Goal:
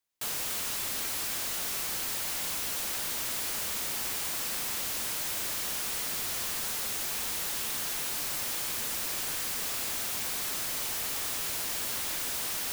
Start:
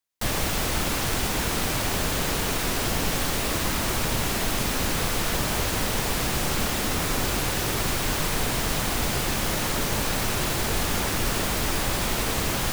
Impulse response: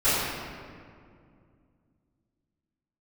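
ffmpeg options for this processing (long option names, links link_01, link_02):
-af "aeval=exprs='(mod(26.6*val(0)+1,2)-1)/26.6':channel_layout=same"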